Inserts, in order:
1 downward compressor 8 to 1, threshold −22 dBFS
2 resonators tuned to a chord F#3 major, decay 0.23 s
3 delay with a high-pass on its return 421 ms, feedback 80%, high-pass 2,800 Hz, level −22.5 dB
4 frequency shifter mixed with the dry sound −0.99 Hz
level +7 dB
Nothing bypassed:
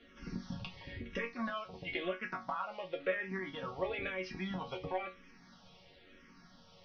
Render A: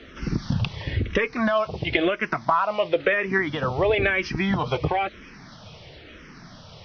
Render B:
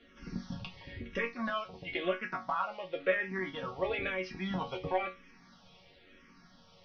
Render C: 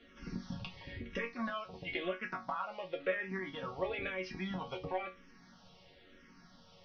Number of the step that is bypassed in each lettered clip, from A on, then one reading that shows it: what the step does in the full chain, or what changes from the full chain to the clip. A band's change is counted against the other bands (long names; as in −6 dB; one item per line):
2, 125 Hz band +4.0 dB
1, average gain reduction 2.0 dB
3, change in momentary loudness spread −14 LU